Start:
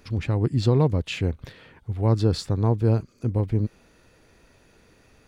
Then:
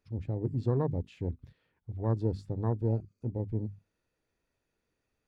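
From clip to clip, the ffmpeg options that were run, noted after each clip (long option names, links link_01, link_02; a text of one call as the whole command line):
ffmpeg -i in.wav -af "bandreject=frequency=50:width_type=h:width=6,bandreject=frequency=100:width_type=h:width=6,bandreject=frequency=150:width_type=h:width=6,bandreject=frequency=200:width_type=h:width=6,bandreject=frequency=250:width_type=h:width=6,afwtdn=0.0355,volume=-8.5dB" out.wav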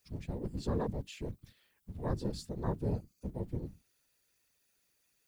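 ffmpeg -i in.wav -af "afftfilt=real='hypot(re,im)*cos(2*PI*random(0))':imag='hypot(re,im)*sin(2*PI*random(1))':win_size=512:overlap=0.75,crystalizer=i=10:c=0" out.wav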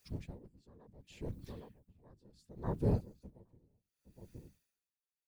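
ffmpeg -i in.wav -filter_complex "[0:a]asplit=2[link_01][link_02];[link_02]adelay=816.3,volume=-17dB,highshelf=frequency=4000:gain=-18.4[link_03];[link_01][link_03]amix=inputs=2:normalize=0,aeval=exprs='val(0)*pow(10,-31*(0.5-0.5*cos(2*PI*0.69*n/s))/20)':channel_layout=same,volume=3dB" out.wav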